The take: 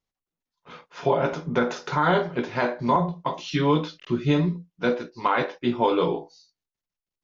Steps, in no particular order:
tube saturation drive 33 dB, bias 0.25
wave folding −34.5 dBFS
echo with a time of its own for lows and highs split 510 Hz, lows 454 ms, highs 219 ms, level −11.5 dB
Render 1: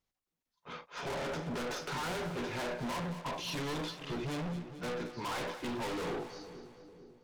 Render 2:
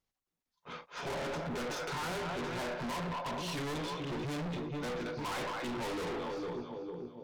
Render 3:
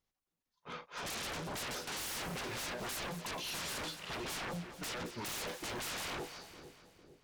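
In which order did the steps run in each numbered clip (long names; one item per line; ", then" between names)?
tube saturation, then wave folding, then echo with a time of its own for lows and highs
echo with a time of its own for lows and highs, then tube saturation, then wave folding
wave folding, then echo with a time of its own for lows and highs, then tube saturation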